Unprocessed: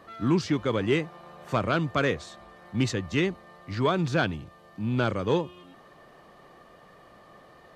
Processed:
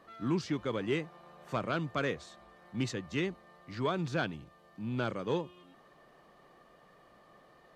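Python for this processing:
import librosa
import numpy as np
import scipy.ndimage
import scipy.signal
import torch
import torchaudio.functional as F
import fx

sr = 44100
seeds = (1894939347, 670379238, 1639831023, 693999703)

y = fx.peak_eq(x, sr, hz=91.0, db=-15.0, octaves=0.24)
y = F.gain(torch.from_numpy(y), -7.5).numpy()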